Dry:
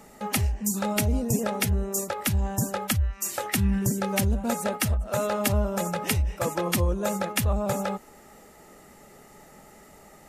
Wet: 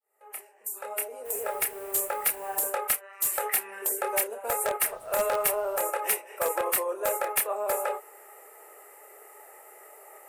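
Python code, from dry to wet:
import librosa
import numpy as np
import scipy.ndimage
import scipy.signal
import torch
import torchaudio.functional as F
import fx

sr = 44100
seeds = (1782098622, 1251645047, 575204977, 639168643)

p1 = fx.fade_in_head(x, sr, length_s=2.29)
p2 = scipy.signal.sosfilt(scipy.signal.ellip(4, 1.0, 60, 410.0, 'highpass', fs=sr, output='sos'), p1)
p3 = fx.high_shelf(p2, sr, hz=8900.0, db=11.5)
p4 = fx.quant_dither(p3, sr, seeds[0], bits=8, dither='triangular', at=(1.24, 2.68), fade=0.02)
p5 = fx.chorus_voices(p4, sr, voices=6, hz=0.82, base_ms=28, depth_ms=4.5, mix_pct=30)
p6 = fx.band_shelf(p5, sr, hz=4700.0, db=-13.5, octaves=1.3)
p7 = fx.dmg_noise_colour(p6, sr, seeds[1], colour='pink', level_db=-62.0, at=(4.87, 5.8), fade=0.02)
p8 = (np.mod(10.0 ** (21.0 / 20.0) * p7 + 1.0, 2.0) - 1.0) / 10.0 ** (21.0 / 20.0)
y = p7 + (p8 * librosa.db_to_amplitude(-5.5))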